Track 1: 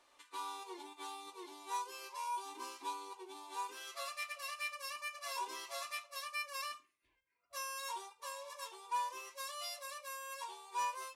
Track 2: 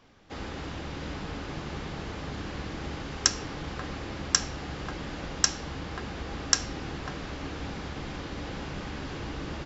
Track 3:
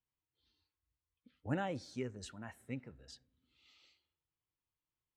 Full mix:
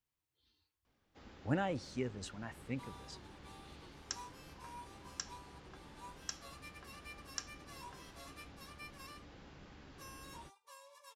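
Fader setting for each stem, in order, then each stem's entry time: −11.5, −19.5, +2.0 decibels; 2.45, 0.85, 0.00 seconds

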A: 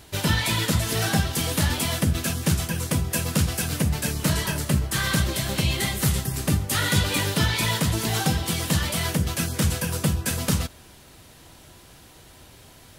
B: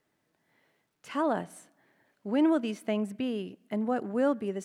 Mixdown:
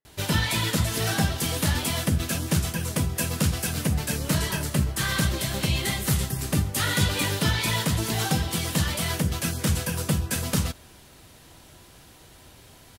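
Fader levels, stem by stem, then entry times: −1.5, −16.5 decibels; 0.05, 0.00 seconds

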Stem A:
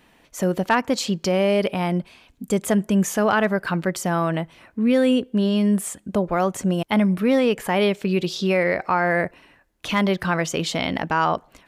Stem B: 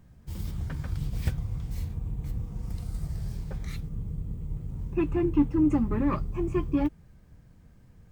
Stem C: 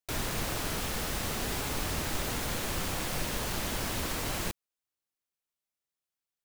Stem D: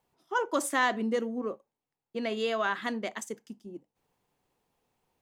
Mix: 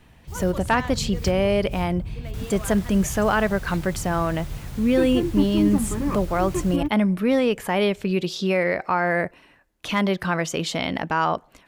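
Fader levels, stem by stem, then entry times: −1.5, +0.5, −10.5, −9.5 decibels; 0.00, 0.00, 2.25, 0.00 seconds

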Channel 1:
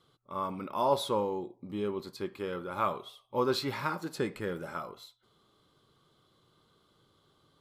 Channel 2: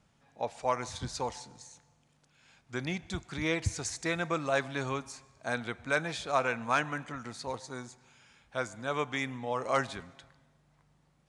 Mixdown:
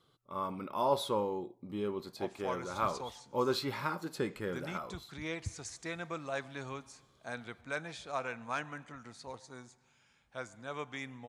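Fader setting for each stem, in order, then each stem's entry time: −2.5, −8.5 decibels; 0.00, 1.80 seconds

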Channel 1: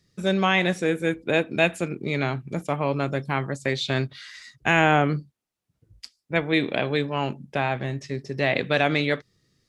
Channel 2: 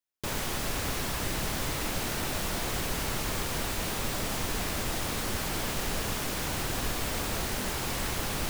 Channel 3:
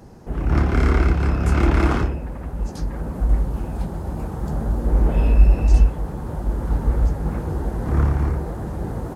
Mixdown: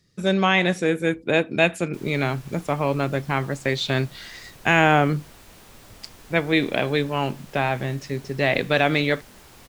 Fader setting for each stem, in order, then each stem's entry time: +2.0 dB, −16.0 dB, muted; 0.00 s, 1.70 s, muted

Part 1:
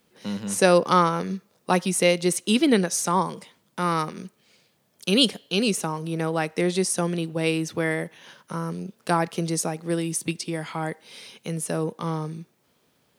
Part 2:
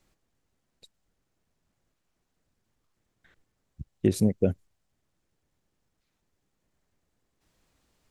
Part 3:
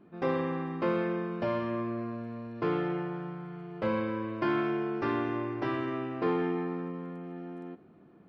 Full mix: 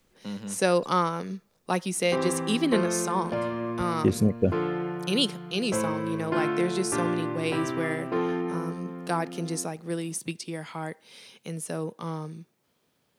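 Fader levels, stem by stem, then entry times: −5.5, +0.5, +1.5 decibels; 0.00, 0.00, 1.90 seconds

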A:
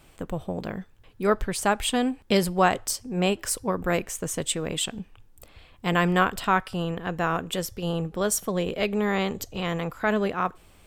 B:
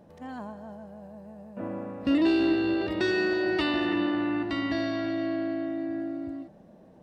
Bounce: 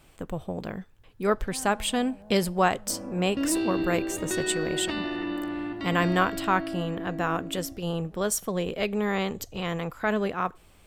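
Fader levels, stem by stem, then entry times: −2.0, −4.5 decibels; 0.00, 1.30 seconds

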